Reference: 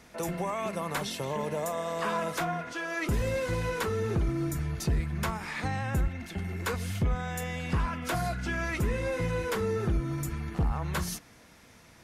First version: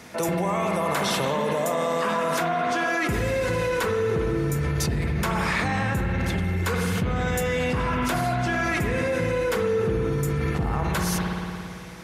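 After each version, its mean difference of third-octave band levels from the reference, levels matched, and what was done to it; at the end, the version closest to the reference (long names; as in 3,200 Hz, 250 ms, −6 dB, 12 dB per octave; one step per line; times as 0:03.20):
4.0 dB: high-pass filter 85 Hz 12 dB per octave
spring reverb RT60 2.5 s, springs 56 ms, chirp 35 ms, DRR 2.5 dB
in parallel at +3 dB: compressor whose output falls as the input rises −34 dBFS, ratio −1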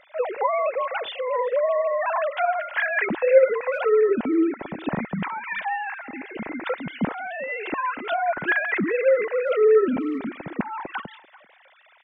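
18.5 dB: three sine waves on the formant tracks
notch filter 1,200 Hz, Q 10
far-end echo of a speakerphone 390 ms, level −20 dB
level +7 dB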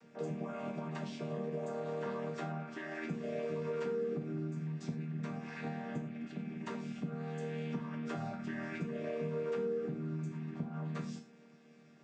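9.0 dB: channel vocoder with a chord as carrier major triad, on D#3
downward compressor 3 to 1, threshold −34 dBFS, peak gain reduction 8.5 dB
reverb whose tail is shaped and stops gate 140 ms falling, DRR 3 dB
level −3 dB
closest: first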